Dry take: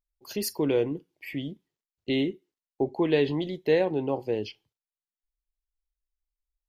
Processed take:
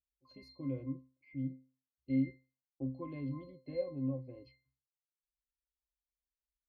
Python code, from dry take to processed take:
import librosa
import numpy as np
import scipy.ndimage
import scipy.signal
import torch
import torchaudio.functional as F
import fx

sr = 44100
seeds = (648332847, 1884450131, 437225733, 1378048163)

y = fx.low_shelf(x, sr, hz=75.0, db=6.0)
y = fx.octave_resonator(y, sr, note='C', decay_s=0.34)
y = F.gain(torch.from_numpy(y), 1.0).numpy()